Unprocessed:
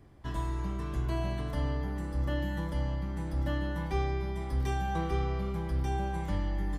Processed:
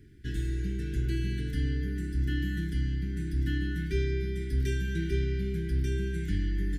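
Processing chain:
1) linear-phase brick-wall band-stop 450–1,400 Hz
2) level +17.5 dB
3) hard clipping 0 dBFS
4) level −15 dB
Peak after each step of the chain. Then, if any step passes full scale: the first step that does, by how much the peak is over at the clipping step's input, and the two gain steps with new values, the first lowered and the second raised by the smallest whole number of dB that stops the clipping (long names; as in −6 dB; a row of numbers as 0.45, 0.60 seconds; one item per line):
−19.5, −2.0, −2.0, −17.0 dBFS
no step passes full scale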